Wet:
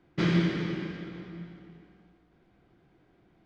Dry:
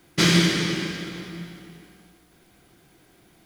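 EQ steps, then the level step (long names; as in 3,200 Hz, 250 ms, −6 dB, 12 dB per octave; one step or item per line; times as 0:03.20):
head-to-tape spacing loss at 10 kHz 34 dB
−4.5 dB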